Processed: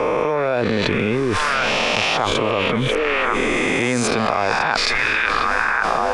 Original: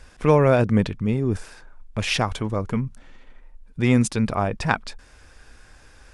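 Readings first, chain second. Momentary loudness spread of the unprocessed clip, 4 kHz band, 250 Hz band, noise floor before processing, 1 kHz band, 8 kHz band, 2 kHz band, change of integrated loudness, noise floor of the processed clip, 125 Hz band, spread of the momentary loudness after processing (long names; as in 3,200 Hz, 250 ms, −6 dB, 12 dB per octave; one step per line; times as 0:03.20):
14 LU, +11.0 dB, 0.0 dB, −51 dBFS, +9.5 dB, +6.5 dB, +13.0 dB, +4.0 dB, −20 dBFS, −4.5 dB, 2 LU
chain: peak hold with a rise ahead of every peak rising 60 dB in 1.23 s
three-way crossover with the lows and the highs turned down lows −13 dB, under 330 Hz, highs −12 dB, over 5,700 Hz
echo through a band-pass that steps 541 ms, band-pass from 2,500 Hz, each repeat −0.7 octaves, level −9.5 dB
envelope flattener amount 100%
level −5 dB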